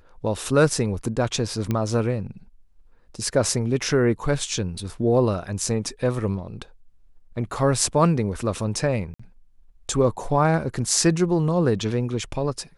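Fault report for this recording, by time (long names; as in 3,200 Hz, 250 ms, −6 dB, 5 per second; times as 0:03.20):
0:01.71: click −12 dBFS
0:09.14–0:09.20: drop-out 55 ms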